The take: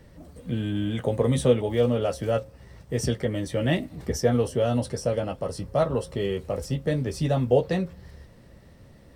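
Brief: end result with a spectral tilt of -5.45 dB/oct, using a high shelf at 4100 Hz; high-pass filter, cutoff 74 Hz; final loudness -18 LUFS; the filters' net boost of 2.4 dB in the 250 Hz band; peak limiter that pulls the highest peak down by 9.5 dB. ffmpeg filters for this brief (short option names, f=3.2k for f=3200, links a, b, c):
-af "highpass=74,equalizer=f=250:t=o:g=3,highshelf=f=4.1k:g=9,volume=9dB,alimiter=limit=-6.5dB:level=0:latency=1"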